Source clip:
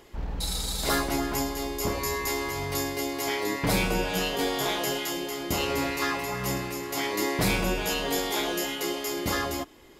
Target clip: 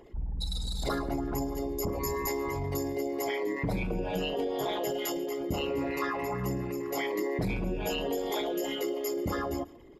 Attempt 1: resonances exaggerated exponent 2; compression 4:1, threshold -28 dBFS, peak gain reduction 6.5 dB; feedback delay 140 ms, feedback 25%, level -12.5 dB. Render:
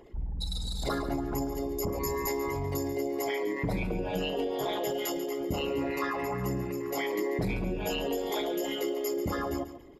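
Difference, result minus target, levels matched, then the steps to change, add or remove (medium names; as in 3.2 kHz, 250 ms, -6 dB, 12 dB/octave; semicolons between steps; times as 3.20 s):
echo-to-direct +9 dB
change: feedback delay 140 ms, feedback 25%, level -21.5 dB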